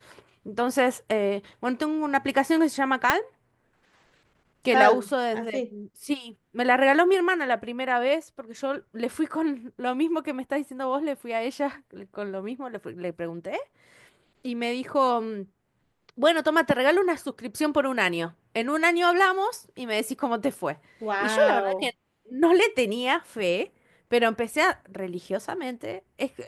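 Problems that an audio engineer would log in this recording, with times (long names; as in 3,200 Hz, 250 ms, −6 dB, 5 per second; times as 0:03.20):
0:03.10: click −4 dBFS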